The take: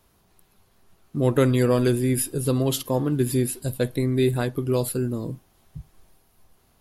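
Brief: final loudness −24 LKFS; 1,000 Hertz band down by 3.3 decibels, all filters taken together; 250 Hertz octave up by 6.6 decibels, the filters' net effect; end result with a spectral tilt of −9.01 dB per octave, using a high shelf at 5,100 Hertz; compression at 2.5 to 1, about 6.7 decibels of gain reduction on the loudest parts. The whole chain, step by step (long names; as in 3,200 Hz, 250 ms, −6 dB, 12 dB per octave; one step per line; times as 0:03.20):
parametric band 250 Hz +7.5 dB
parametric band 1,000 Hz −4.5 dB
high-shelf EQ 5,100 Hz −6.5 dB
downward compressor 2.5 to 1, threshold −22 dBFS
level +1 dB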